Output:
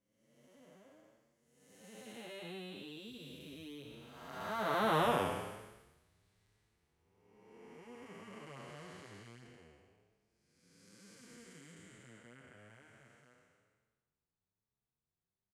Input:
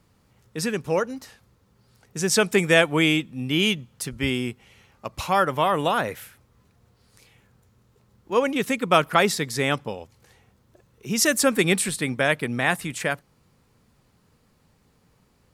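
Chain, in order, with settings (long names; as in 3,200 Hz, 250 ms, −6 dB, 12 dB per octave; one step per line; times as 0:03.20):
spectrum smeared in time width 634 ms
source passing by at 0:05.08, 52 m/s, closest 13 metres
barber-pole flanger 7.4 ms +1.1 Hz
level +2 dB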